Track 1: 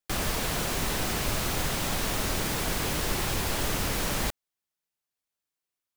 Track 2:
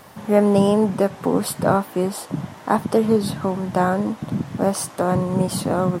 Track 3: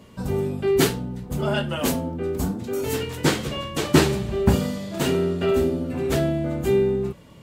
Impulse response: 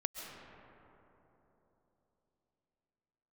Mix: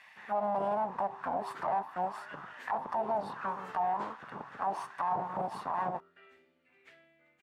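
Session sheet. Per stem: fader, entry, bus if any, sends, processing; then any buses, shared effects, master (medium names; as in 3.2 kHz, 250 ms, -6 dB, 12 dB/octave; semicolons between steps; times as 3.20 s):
mute
+2.0 dB, 0.00 s, no send, comb filter that takes the minimum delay 1.1 ms
2.48 s -15.5 dB -> 2.92 s -6.5 dB -> 3.91 s -6.5 dB -> 4.34 s -19 dB, 0.75 s, no send, none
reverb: none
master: auto-wah 740–2300 Hz, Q 3.7, down, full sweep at -15 dBFS; peak limiter -23.5 dBFS, peak gain reduction 11.5 dB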